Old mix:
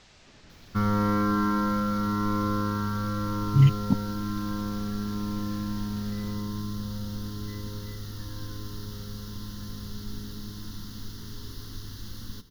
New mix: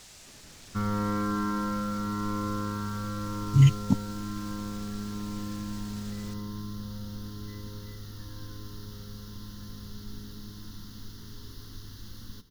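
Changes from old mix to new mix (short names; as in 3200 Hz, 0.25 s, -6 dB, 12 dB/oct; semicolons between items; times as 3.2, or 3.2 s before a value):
speech: remove air absorption 160 m; background -4.5 dB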